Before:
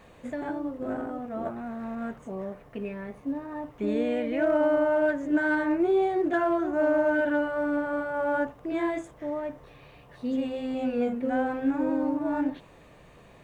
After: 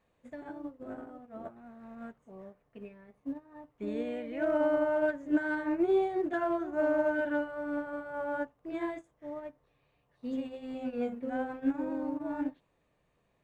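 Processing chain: in parallel at +3 dB: limiter -25 dBFS, peak gain reduction 9.5 dB; on the sum: upward expander 2.5:1, over -32 dBFS; gain -5.5 dB

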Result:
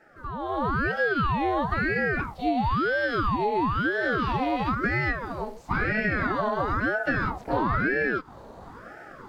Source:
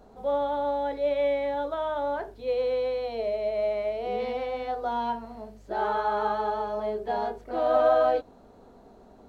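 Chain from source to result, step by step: compressor 12:1, threshold -31 dBFS, peak gain reduction 14.5 dB; HPF 150 Hz 24 dB/oct; AGC gain up to 12 dB; ring modulator with a swept carrier 640 Hz, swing 70%, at 1 Hz

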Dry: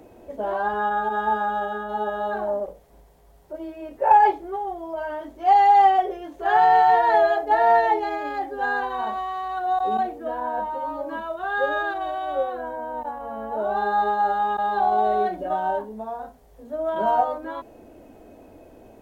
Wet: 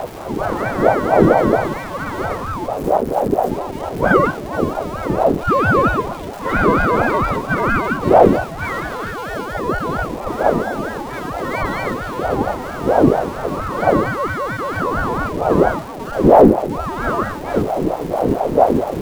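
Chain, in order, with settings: zero-crossing step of -29 dBFS; wind noise 130 Hz -17 dBFS; hard clip -3 dBFS, distortion -15 dB; ring modulator with a swept carrier 480 Hz, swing 50%, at 4.4 Hz; gain +2 dB

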